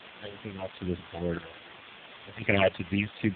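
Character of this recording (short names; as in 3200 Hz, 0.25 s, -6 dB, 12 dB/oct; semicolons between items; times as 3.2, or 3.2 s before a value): random-step tremolo 2.9 Hz, depth 85%; phasing stages 8, 2.5 Hz, lowest notch 250–1100 Hz; a quantiser's noise floor 8-bit, dither triangular; AMR-NB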